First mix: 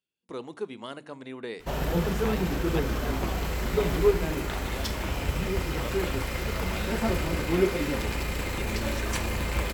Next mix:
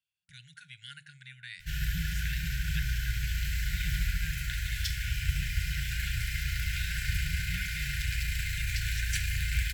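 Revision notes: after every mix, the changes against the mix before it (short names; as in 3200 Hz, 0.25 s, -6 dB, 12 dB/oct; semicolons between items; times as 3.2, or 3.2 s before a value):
master: add brick-wall FIR band-stop 160–1400 Hz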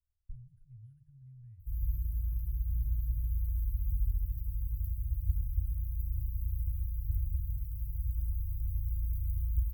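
speech: remove HPF 260 Hz 12 dB/oct; master: add inverse Chebyshev band-stop 260–8300 Hz, stop band 50 dB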